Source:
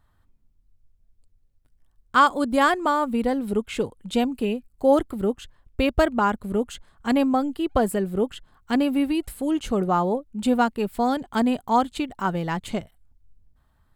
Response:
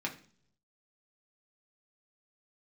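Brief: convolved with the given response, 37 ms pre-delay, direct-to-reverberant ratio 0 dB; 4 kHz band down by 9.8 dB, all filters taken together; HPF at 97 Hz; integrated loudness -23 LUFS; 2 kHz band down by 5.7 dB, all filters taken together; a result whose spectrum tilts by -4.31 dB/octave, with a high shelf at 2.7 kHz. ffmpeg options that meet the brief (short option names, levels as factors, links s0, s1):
-filter_complex "[0:a]highpass=97,equalizer=f=2000:t=o:g=-4.5,highshelf=f=2700:g=-8,equalizer=f=4000:t=o:g=-5,asplit=2[s0][s1];[1:a]atrim=start_sample=2205,adelay=37[s2];[s1][s2]afir=irnorm=-1:irlink=0,volume=0.668[s3];[s0][s3]amix=inputs=2:normalize=0,volume=0.75"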